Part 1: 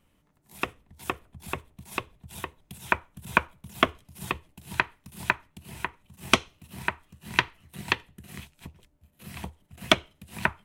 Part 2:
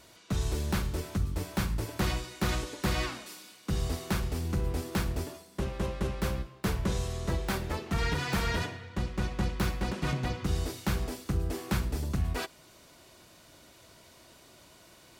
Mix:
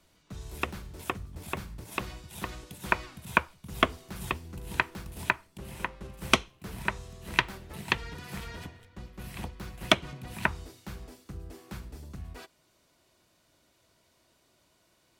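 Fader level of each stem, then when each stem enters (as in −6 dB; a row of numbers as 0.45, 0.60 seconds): −2.0, −12.0 decibels; 0.00, 0.00 seconds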